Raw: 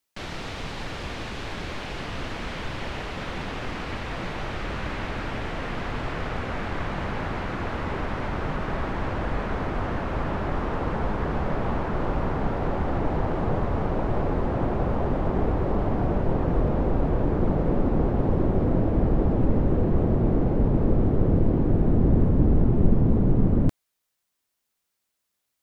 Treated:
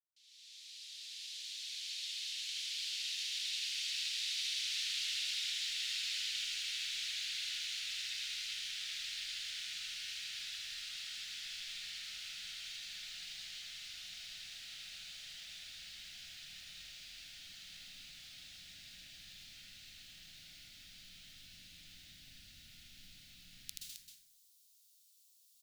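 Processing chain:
fade in at the beginning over 4.73 s
inverse Chebyshev high-pass filter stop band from 1,100 Hz, stop band 60 dB
loudspeakers that aren't time-aligned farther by 27 metres −2 dB, 91 metres −8 dB
dense smooth reverb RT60 0.85 s, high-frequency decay 0.55×, pre-delay 115 ms, DRR −2.5 dB
level +7 dB

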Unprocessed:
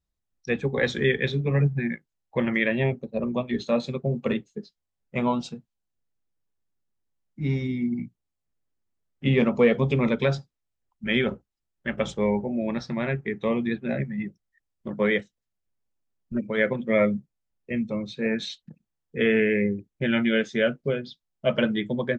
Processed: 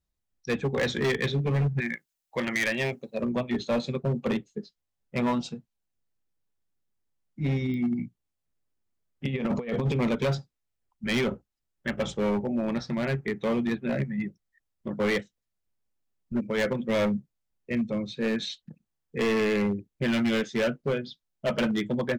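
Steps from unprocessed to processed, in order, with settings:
0:01.80–0:03.22: spectral tilt +3 dB per octave
0:09.25–0:10.00: compressor whose output falls as the input rises −25 dBFS, ratio −0.5
hard clipping −21.5 dBFS, distortion −10 dB
digital clicks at 0:07.74, −28 dBFS

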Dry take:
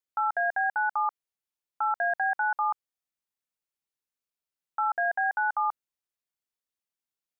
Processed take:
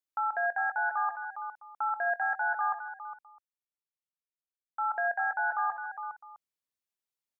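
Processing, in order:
multi-tap delay 63/157/409/658 ms −12.5/−16/−8.5/−19.5 dB
0:01.89–0:04.91: multiband upward and downward expander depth 40%
level −3.5 dB

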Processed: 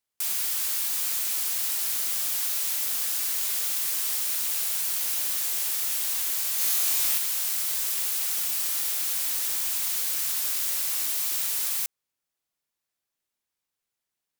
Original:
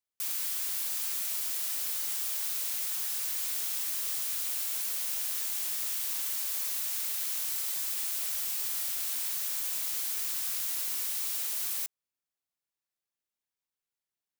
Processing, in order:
0:06.56–0:07.18: flutter between parallel walls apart 3.8 metres, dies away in 0.53 s
tape wow and flutter 29 cents
level +6 dB

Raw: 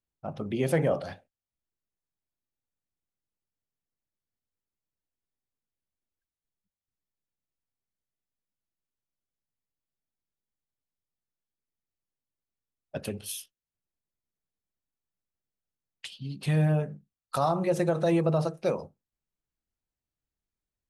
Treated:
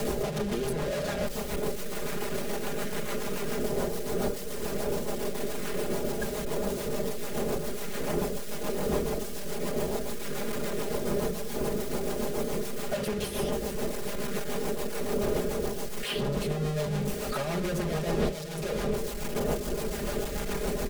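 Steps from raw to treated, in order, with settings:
sign of each sample alone
wind on the microphone 530 Hz −35 dBFS
parametric band 480 Hz +7.5 dB 0.67 octaves
comb filter 4.9 ms, depth 89%
hum removal 93.44 Hz, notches 37
rotating-speaker cabinet horn 7 Hz
multiband upward and downward compressor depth 100%

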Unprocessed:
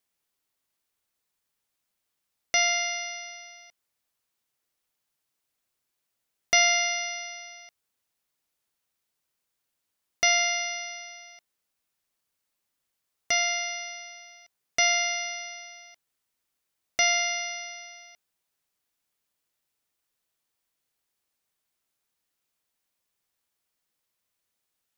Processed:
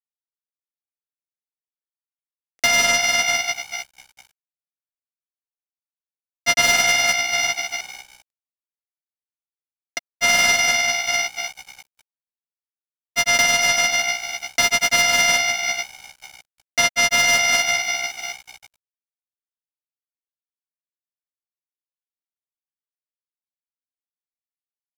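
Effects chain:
mid-hump overdrive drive 30 dB, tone 5,700 Hz, clips at −7 dBFS
on a send: echo with shifted repeats 273 ms, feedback 43%, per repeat +64 Hz, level −11.5 dB
on the sum: granular cloud 100 ms, grains 20 per second, spray 263 ms, pitch spread up and down by 0 semitones
dead-zone distortion −38 dBFS

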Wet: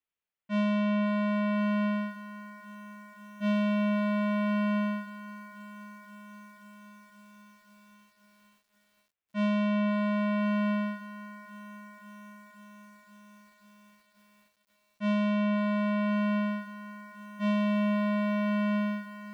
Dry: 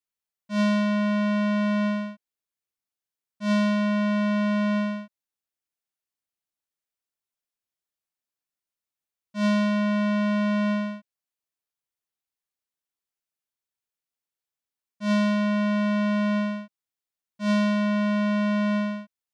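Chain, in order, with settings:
dynamic equaliser 1,700 Hz, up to −7 dB, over −47 dBFS, Q 2.8
downward compressor 10 to 1, threshold −26 dBFS, peak gain reduction 5.5 dB
high shelf with overshoot 3,700 Hz −9.5 dB, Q 1.5
feedback echo at a low word length 527 ms, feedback 80%, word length 9 bits, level −14 dB

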